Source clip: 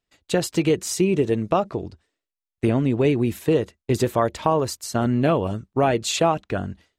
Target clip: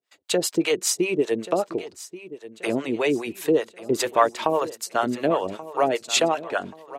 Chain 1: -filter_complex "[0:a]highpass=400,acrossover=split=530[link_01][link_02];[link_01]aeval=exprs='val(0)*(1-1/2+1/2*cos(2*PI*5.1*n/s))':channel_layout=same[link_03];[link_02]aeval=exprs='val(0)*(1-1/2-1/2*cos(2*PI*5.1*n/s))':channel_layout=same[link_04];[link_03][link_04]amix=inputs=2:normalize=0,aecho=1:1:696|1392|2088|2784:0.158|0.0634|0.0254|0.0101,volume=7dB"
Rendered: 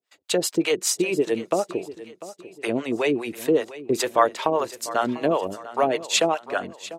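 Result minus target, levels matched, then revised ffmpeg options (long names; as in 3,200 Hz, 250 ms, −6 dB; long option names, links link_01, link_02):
echo 436 ms early
-filter_complex "[0:a]highpass=400,acrossover=split=530[link_01][link_02];[link_01]aeval=exprs='val(0)*(1-1/2+1/2*cos(2*PI*5.1*n/s))':channel_layout=same[link_03];[link_02]aeval=exprs='val(0)*(1-1/2-1/2*cos(2*PI*5.1*n/s))':channel_layout=same[link_04];[link_03][link_04]amix=inputs=2:normalize=0,aecho=1:1:1132|2264|3396|4528:0.158|0.0634|0.0254|0.0101,volume=7dB"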